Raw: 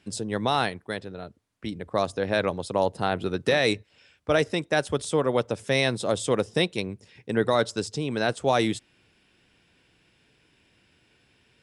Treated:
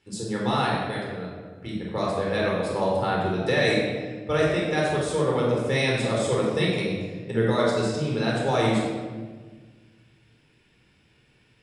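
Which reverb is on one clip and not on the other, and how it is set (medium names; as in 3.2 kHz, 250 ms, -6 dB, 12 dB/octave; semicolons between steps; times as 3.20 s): simulated room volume 1400 m³, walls mixed, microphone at 4.2 m; trim -7 dB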